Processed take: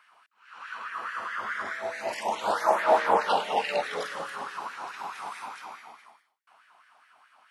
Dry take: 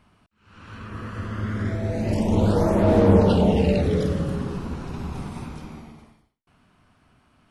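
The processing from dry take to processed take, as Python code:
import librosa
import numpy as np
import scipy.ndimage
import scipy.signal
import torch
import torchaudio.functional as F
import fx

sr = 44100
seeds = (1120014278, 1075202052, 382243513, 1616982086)

y = fx.filter_lfo_highpass(x, sr, shape='sine', hz=4.7, low_hz=780.0, high_hz=1800.0, q=3.5)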